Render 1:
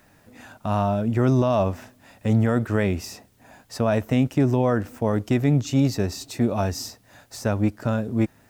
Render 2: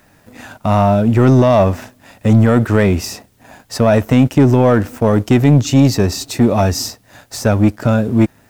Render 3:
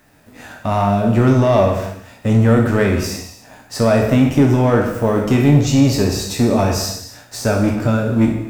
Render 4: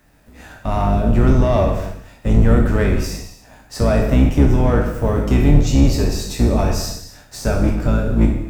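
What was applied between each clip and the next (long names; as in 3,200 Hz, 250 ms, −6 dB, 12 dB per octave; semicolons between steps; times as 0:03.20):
leveller curve on the samples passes 1; level +7.5 dB
peak hold with a decay on every bin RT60 0.39 s; reverb whose tail is shaped and stops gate 350 ms falling, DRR 2.5 dB; level −4.5 dB
sub-octave generator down 2 octaves, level +4 dB; level −4 dB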